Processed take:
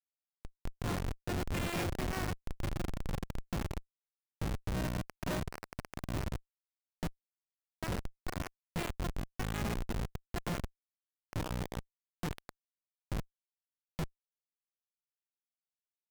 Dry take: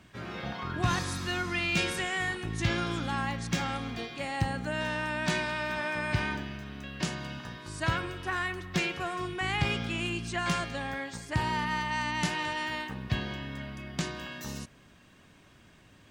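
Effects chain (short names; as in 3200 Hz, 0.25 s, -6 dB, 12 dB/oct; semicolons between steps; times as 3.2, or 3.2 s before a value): added harmonics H 2 -31 dB, 3 -40 dB, 6 -44 dB, 8 -27 dB, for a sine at -16 dBFS; 2.39–3.34 AM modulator 24 Hz, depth 45%; Schmitt trigger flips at -26.5 dBFS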